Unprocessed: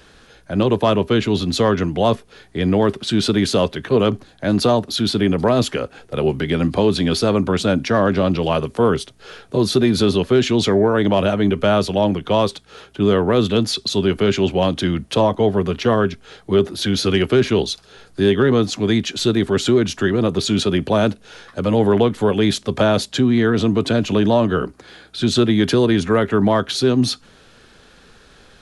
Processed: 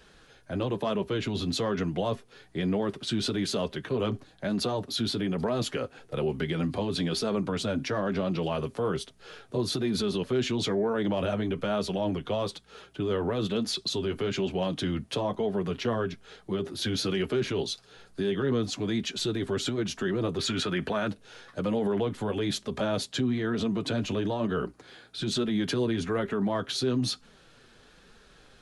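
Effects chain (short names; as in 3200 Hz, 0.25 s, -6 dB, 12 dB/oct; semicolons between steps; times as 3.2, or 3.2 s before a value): 20.39–21.08 bell 1600 Hz +10.5 dB 1.4 oct; limiter -12 dBFS, peak gain reduction 9.5 dB; flange 1.1 Hz, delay 4.3 ms, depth 4.2 ms, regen -36%; gain -4.5 dB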